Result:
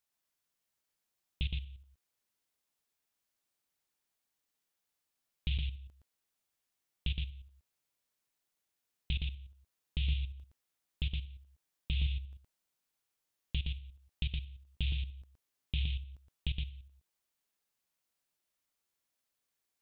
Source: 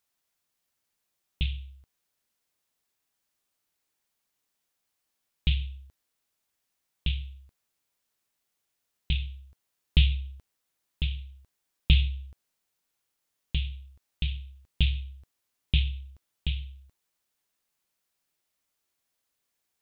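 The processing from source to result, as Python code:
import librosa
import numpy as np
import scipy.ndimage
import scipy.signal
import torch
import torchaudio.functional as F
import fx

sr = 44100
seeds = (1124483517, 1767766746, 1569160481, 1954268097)

p1 = fx.level_steps(x, sr, step_db=14)
p2 = p1 + fx.echo_single(p1, sr, ms=117, db=-4.0, dry=0)
y = p2 * librosa.db_to_amplitude(-3.0)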